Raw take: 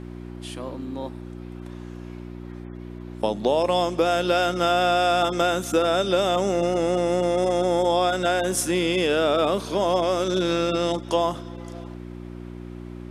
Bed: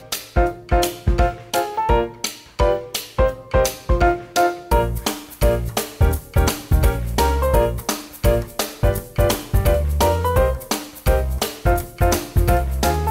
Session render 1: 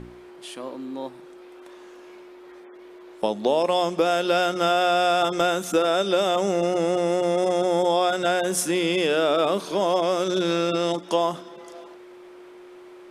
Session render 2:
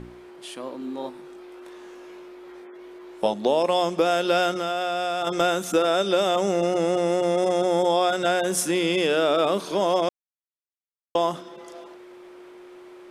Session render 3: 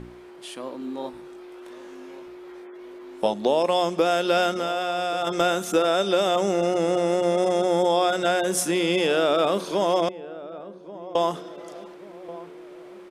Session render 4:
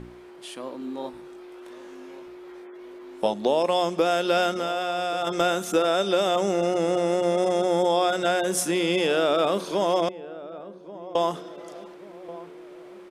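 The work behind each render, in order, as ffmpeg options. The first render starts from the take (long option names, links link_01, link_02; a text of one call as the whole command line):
ffmpeg -i in.wav -af "bandreject=frequency=60:width_type=h:width=4,bandreject=frequency=120:width_type=h:width=4,bandreject=frequency=180:width_type=h:width=4,bandreject=frequency=240:width_type=h:width=4,bandreject=frequency=300:width_type=h:width=4" out.wav
ffmpeg -i in.wav -filter_complex "[0:a]asettb=1/sr,asplit=3[link_01][link_02][link_03];[link_01]atrim=end=0.794[link_04];[link_02]atrim=start=0.79:end=3.34,asetpts=PTS-STARTPTS,afade=type=in:duration=0.004:curve=qsin,afade=type=out:start_time=2.546:duration=0.004:curve=qsin,asplit=2[link_05][link_06];[link_06]adelay=20,volume=-4.5dB[link_07];[link_05][link_07]amix=inputs=2:normalize=0,atrim=end_sample=112455[link_08];[link_03]atrim=start=3.336[link_09];[link_04][link_08]acrossfade=duration=0.004:curve1=hsin:curve2=qsin[link_10];[link_10][link_09]acrossfade=duration=0.004:curve1=qsin:curve2=hsin,asettb=1/sr,asplit=3[link_11][link_12][link_13];[link_11]atrim=end=4.514[link_14];[link_12]atrim=start=4.51:end=5.27,asetpts=PTS-STARTPTS,afade=type=in:duration=0.004:curve=qsin,afade=type=out:start_time=0.756:duration=0.004:curve=qsin,acompressor=threshold=-25dB:ratio=2.5:attack=3.2:release=140:knee=1:detection=peak[link_15];[link_13]atrim=start=5.266[link_16];[link_14][link_15]acrossfade=duration=0.004:curve1=hsin:curve2=qsin[link_17];[link_17][link_16]acrossfade=duration=0.004:curve1=qsin:curve2=hsin,asplit=3[link_18][link_19][link_20];[link_18]atrim=end=10.09,asetpts=PTS-STARTPTS,afade=type=out:start_time=10.086:duration=0.004:curve=hsin[link_21];[link_19]atrim=start=10.09:end=11.15,asetpts=PTS-STARTPTS,volume=0[link_22];[link_20]atrim=start=11.15,asetpts=PTS-STARTPTS,afade=type=in:duration=0.004:curve=hsin[link_23];[link_21][link_22][link_23]concat=n=3:v=0:a=1" out.wav
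ffmpeg -i in.wav -filter_complex "[0:a]asplit=2[link_01][link_02];[link_02]adelay=1133,lowpass=frequency=830:poles=1,volume=-15dB,asplit=2[link_03][link_04];[link_04]adelay=1133,lowpass=frequency=830:poles=1,volume=0.55,asplit=2[link_05][link_06];[link_06]adelay=1133,lowpass=frequency=830:poles=1,volume=0.55,asplit=2[link_07][link_08];[link_08]adelay=1133,lowpass=frequency=830:poles=1,volume=0.55,asplit=2[link_09][link_10];[link_10]adelay=1133,lowpass=frequency=830:poles=1,volume=0.55[link_11];[link_01][link_03][link_05][link_07][link_09][link_11]amix=inputs=6:normalize=0" out.wav
ffmpeg -i in.wav -af "volume=-1dB" out.wav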